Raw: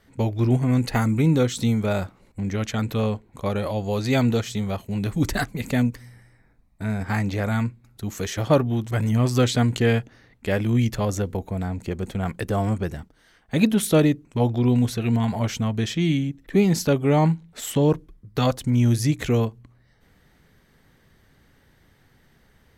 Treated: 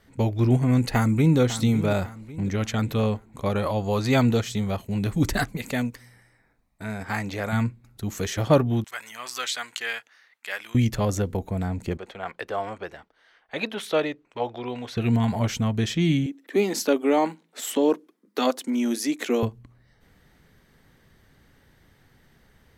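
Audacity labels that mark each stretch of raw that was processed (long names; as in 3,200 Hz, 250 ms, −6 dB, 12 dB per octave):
0.910000	1.380000	delay throw 550 ms, feedback 45%, level −13 dB
3.540000	4.210000	parametric band 1,100 Hz +6 dB 0.69 octaves
5.570000	7.530000	low-shelf EQ 260 Hz −10.5 dB
8.840000	10.750000	Chebyshev high-pass filter 1,400 Hz
11.970000	14.970000	three-way crossover with the lows and the highs turned down lows −22 dB, under 430 Hz, highs −17 dB, over 4,600 Hz
16.260000	19.430000	Butterworth high-pass 230 Hz 48 dB per octave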